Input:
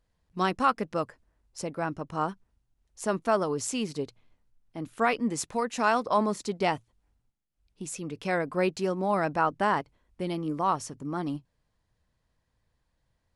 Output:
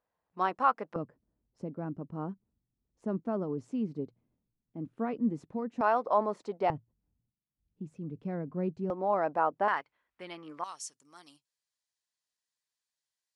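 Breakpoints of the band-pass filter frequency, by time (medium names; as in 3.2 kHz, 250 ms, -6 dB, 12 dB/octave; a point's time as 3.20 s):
band-pass filter, Q 1.1
860 Hz
from 0.96 s 210 Hz
from 5.81 s 680 Hz
from 6.70 s 160 Hz
from 8.90 s 670 Hz
from 9.68 s 1.7 kHz
from 10.64 s 7.2 kHz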